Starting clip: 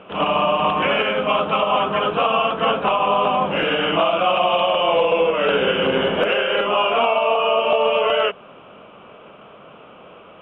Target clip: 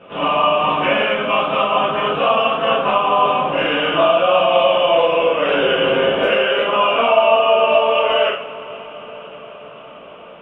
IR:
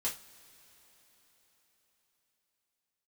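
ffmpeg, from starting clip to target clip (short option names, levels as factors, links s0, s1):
-filter_complex "[0:a]asettb=1/sr,asplit=3[s0][s1][s2];[s0]atrim=end=3.904[s3];[s1]atrim=start=3.9:end=4.46,asetpts=PTS-STARTPTS,afade=t=in:d=0.004:c=qsin,afade=t=out:st=0.556:d=0.004:c=qsin,bandreject=f=2100:w=7.4[s4];[s2]atrim=start=4.456[s5];[s3][s4]acrossfade=d=0.004:c1=hsin:c2=qsin[s6];[s6][s5]acrossfade=d=0.004:c1=qsin:c2=hsin[s7];[1:a]atrim=start_sample=2205,asetrate=25578,aresample=44100[s8];[s7][s8]afir=irnorm=-1:irlink=0,volume=0.596"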